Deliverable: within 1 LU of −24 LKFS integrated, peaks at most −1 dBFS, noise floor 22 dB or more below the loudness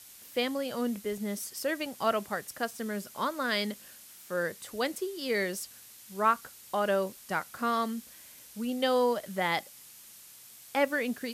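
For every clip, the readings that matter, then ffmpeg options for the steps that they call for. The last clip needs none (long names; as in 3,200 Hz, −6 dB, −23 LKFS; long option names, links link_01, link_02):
background noise floor −52 dBFS; target noise floor −54 dBFS; integrated loudness −31.5 LKFS; sample peak −12.5 dBFS; target loudness −24.0 LKFS
→ -af "afftdn=noise_reduction=6:noise_floor=-52"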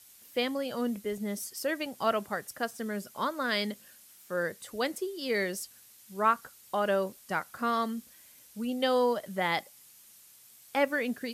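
background noise floor −56 dBFS; integrated loudness −31.5 LKFS; sample peak −12.5 dBFS; target loudness −24.0 LKFS
→ -af "volume=7.5dB"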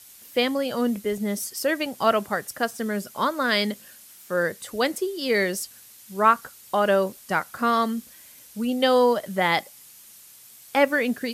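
integrated loudness −24.0 LKFS; sample peak −5.0 dBFS; background noise floor −49 dBFS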